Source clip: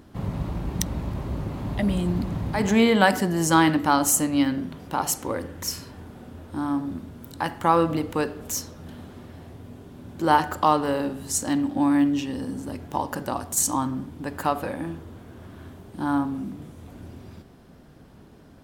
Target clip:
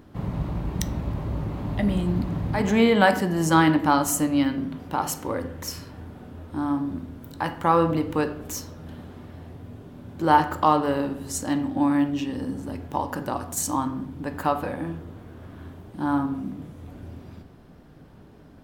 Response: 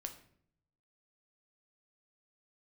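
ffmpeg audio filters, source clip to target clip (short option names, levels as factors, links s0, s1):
-filter_complex "[0:a]asplit=2[s0][s1];[s1]equalizer=f=8800:t=o:w=1.4:g=-13.5[s2];[1:a]atrim=start_sample=2205[s3];[s2][s3]afir=irnorm=-1:irlink=0,volume=2.37[s4];[s0][s4]amix=inputs=2:normalize=0,volume=0.398"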